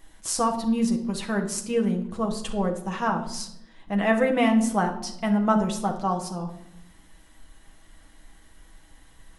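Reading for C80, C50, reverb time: 13.5 dB, 9.5 dB, 0.85 s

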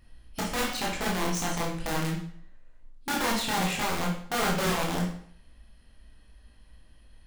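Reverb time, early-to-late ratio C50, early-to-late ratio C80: 0.60 s, 4.0 dB, 8.0 dB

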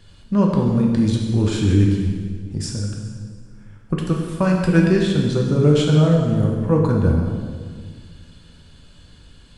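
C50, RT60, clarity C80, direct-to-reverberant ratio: 2.5 dB, 1.8 s, 4.0 dB, -1.0 dB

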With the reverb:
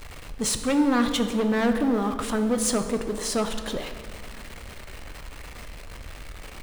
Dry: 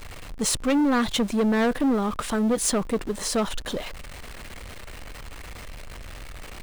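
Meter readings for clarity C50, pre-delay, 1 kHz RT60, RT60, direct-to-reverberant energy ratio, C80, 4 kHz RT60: 8.5 dB, 8 ms, 2.0 s, 2.1 s, 7.0 dB, 9.5 dB, 1.4 s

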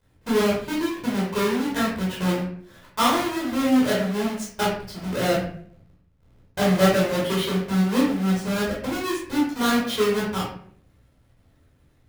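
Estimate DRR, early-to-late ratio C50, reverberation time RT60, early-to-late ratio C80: -7.0 dB, 2.5 dB, 0.60 s, 6.5 dB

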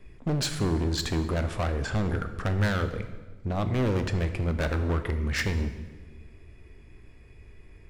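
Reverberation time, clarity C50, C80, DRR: 1.3 s, 10.5 dB, 12.0 dB, 8.5 dB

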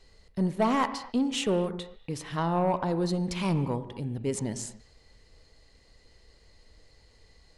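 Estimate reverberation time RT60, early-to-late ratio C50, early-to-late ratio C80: not exponential, 12.5 dB, 13.5 dB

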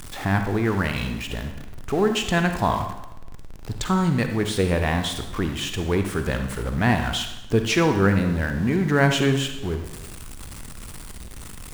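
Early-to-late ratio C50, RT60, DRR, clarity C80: 7.0 dB, 1.0 s, 6.0 dB, 9.5 dB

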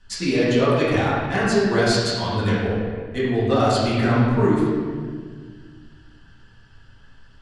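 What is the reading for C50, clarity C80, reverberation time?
-1.5 dB, 0.5 dB, 1.8 s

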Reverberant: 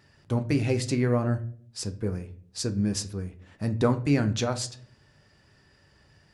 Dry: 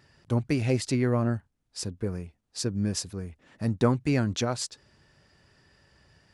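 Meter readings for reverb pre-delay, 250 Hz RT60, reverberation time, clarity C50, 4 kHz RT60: 10 ms, 0.75 s, 0.55 s, 16.0 dB, 0.35 s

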